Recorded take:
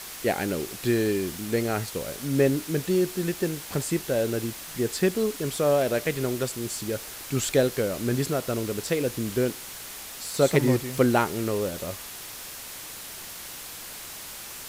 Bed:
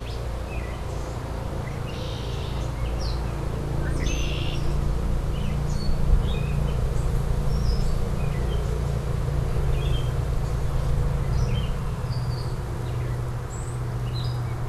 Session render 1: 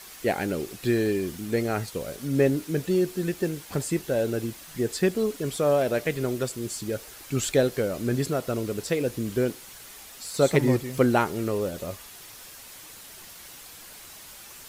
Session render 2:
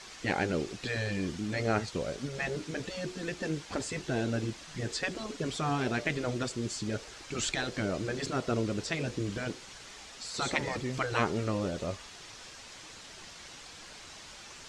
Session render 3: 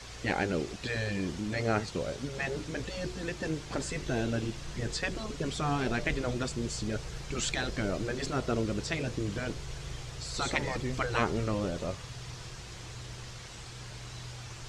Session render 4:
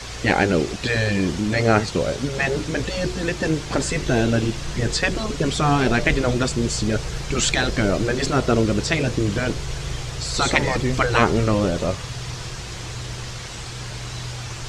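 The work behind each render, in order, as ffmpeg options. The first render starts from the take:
-af "afftdn=nr=7:nf=-40"
-af "lowpass=f=6900:w=0.5412,lowpass=f=6900:w=1.3066,afftfilt=real='re*lt(hypot(re,im),0.282)':imag='im*lt(hypot(re,im),0.282)':win_size=1024:overlap=0.75"
-filter_complex "[1:a]volume=0.133[s0];[0:a][s0]amix=inputs=2:normalize=0"
-af "volume=3.98,alimiter=limit=0.794:level=0:latency=1"

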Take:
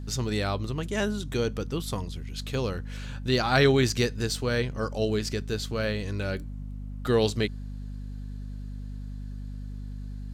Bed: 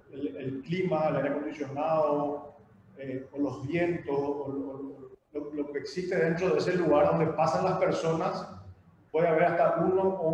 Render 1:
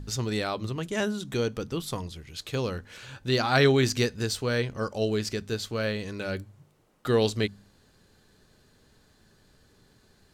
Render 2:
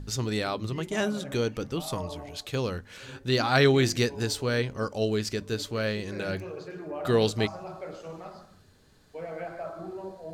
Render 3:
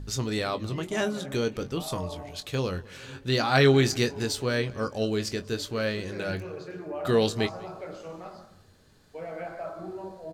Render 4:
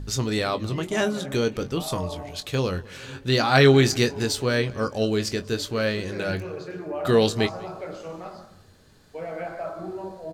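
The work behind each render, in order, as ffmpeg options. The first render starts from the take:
-af "bandreject=f=50:t=h:w=4,bandreject=f=100:t=h:w=4,bandreject=f=150:t=h:w=4,bandreject=f=200:t=h:w=4,bandreject=f=250:t=h:w=4"
-filter_complex "[1:a]volume=0.224[s0];[0:a][s0]amix=inputs=2:normalize=0"
-filter_complex "[0:a]asplit=2[s0][s1];[s1]adelay=22,volume=0.316[s2];[s0][s2]amix=inputs=2:normalize=0,asplit=2[s3][s4];[s4]adelay=196,lowpass=f=3400:p=1,volume=0.0841,asplit=2[s5][s6];[s6]adelay=196,lowpass=f=3400:p=1,volume=0.46,asplit=2[s7][s8];[s8]adelay=196,lowpass=f=3400:p=1,volume=0.46[s9];[s3][s5][s7][s9]amix=inputs=4:normalize=0"
-af "volume=1.58"

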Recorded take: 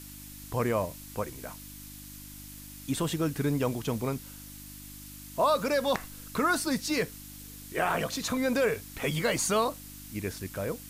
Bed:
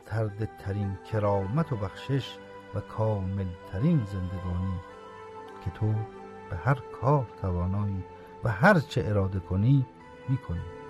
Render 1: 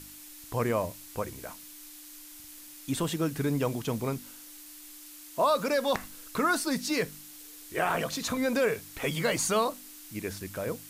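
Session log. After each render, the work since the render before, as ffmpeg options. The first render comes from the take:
-af "bandreject=f=50:t=h:w=4,bandreject=f=100:t=h:w=4,bandreject=f=150:t=h:w=4,bandreject=f=200:t=h:w=4,bandreject=f=250:t=h:w=4"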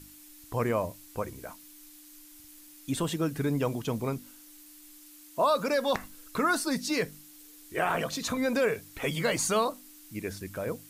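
-af "afftdn=nr=6:nf=-48"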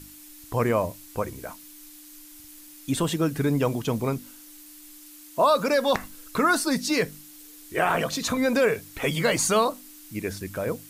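-af "volume=1.78"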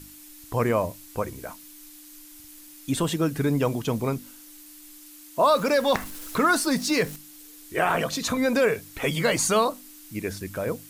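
-filter_complex "[0:a]asettb=1/sr,asplit=3[s0][s1][s2];[s0]atrim=end=5.444[s3];[s1]atrim=start=5.44:end=7.16,asetpts=PTS-STARTPTS,afade=t=in:d=0.004:c=qsin,afade=t=out:st=1.716:d=0.004:c=qsin,aeval=exprs='val(0)+0.5*0.0141*sgn(val(0))':c=same[s4];[s2]atrim=start=7.156[s5];[s3][s4]acrossfade=d=0.004:c1=hsin:c2=qsin[s6];[s6][s5]acrossfade=d=0.004:c1=qsin:c2=hsin"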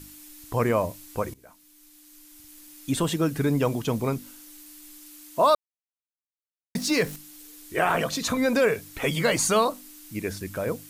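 -filter_complex "[0:a]asplit=4[s0][s1][s2][s3];[s0]atrim=end=1.34,asetpts=PTS-STARTPTS,afade=t=out:st=1.336:d=0.004:c=hsin:silence=0.125893[s4];[s1]atrim=start=1.34:end=5.55,asetpts=PTS-STARTPTS,afade=t=in:d=1.57:silence=0.125893,afade=t=out:st=4.206:d=0.004:c=hsin[s5];[s2]atrim=start=5.55:end=6.75,asetpts=PTS-STARTPTS,volume=0[s6];[s3]atrim=start=6.75,asetpts=PTS-STARTPTS,afade=t=in:d=0.004:c=hsin[s7];[s4][s5][s6][s7]concat=n=4:v=0:a=1"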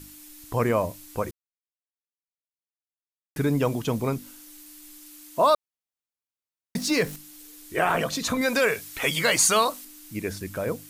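-filter_complex "[0:a]asettb=1/sr,asplit=3[s0][s1][s2];[s0]atrim=end=8.414[s3];[s1]atrim=start=8.41:end=9.85,asetpts=PTS-STARTPTS,afade=t=in:d=0.004:c=qsin,afade=t=out:st=1.436:d=0.004:c=qsin,tiltshelf=f=790:g=-5.5[s4];[s2]atrim=start=9.846[s5];[s3][s4]acrossfade=d=0.004:c1=hsin:c2=qsin[s6];[s6][s5]acrossfade=d=0.004:c1=qsin:c2=hsin,asplit=3[s7][s8][s9];[s7]atrim=end=1.31,asetpts=PTS-STARTPTS,afade=t=out:st=1.306:d=0.004:c=hsin[s10];[s8]atrim=start=1.31:end=3.36,asetpts=PTS-STARTPTS,volume=0[s11];[s9]atrim=start=3.36,asetpts=PTS-STARTPTS,afade=t=in:d=0.004:c=hsin[s12];[s10][s11][s12]concat=n=3:v=0:a=1"

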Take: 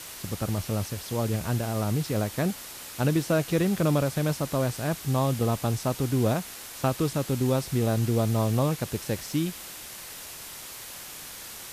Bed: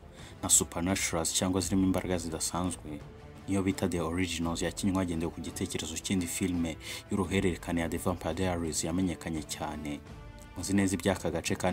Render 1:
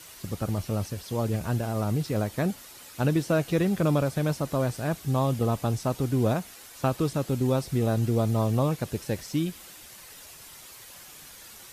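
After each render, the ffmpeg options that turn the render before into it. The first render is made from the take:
-af "afftdn=nr=8:nf=-42"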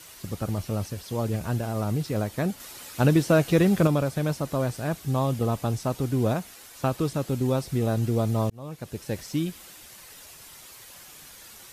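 -filter_complex "[0:a]asplit=4[s0][s1][s2][s3];[s0]atrim=end=2.602[s4];[s1]atrim=start=2.598:end=3.872,asetpts=PTS-STARTPTS,volume=1.68[s5];[s2]atrim=start=3.868:end=8.5,asetpts=PTS-STARTPTS,afade=t=out:st=4.628:d=0.004:c=hsin[s6];[s3]atrim=start=8.5,asetpts=PTS-STARTPTS,afade=t=in:d=0.7[s7];[s4][s5]acrossfade=d=0.004:c1=hsin:c2=hsin[s8];[s6][s7]concat=n=2:v=0:a=1[s9];[s8][s9]acrossfade=d=0.004:c1=hsin:c2=hsin"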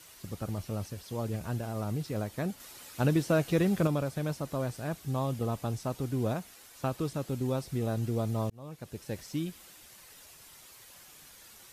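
-af "volume=0.473"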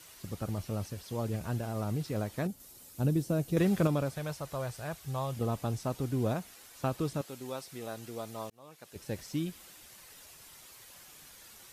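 -filter_complex "[0:a]asettb=1/sr,asplit=3[s0][s1][s2];[s0]atrim=end=2.474[s3];[s1]atrim=start=2.47:end=3.57,asetpts=PTS-STARTPTS,afade=t=in:d=0.004:c=qsin,afade=t=out:st=1.096:d=0.004:c=qsin,equalizer=f=1800:w=0.34:g=-13.5[s4];[s2]atrim=start=3.566[s5];[s3][s4]acrossfade=d=0.004:c1=hsin:c2=qsin[s6];[s6][s5]acrossfade=d=0.004:c1=qsin:c2=hsin,asettb=1/sr,asplit=3[s7][s8][s9];[s7]atrim=end=4.154[s10];[s8]atrim=start=4.15:end=5.37,asetpts=PTS-STARTPTS,afade=t=in:d=0.004:c=qsin,afade=t=out:st=1.216:d=0.004:c=qsin,equalizer=f=250:w=1.2:g=-12[s11];[s9]atrim=start=5.366[s12];[s10][s11]acrossfade=d=0.004:c1=hsin:c2=qsin[s13];[s13][s12]acrossfade=d=0.004:c1=qsin:c2=hsin,asettb=1/sr,asplit=3[s14][s15][s16];[s14]atrim=end=7.214[s17];[s15]atrim=start=7.21:end=8.96,asetpts=PTS-STARTPTS,afade=t=in:d=0.004:c=qsin,afade=t=out:st=1.746:d=0.004:c=qsin,highpass=f=890:p=1[s18];[s16]atrim=start=8.956[s19];[s17][s18]acrossfade=d=0.004:c1=hsin:c2=qsin[s20];[s20][s19]acrossfade=d=0.004:c1=qsin:c2=hsin"

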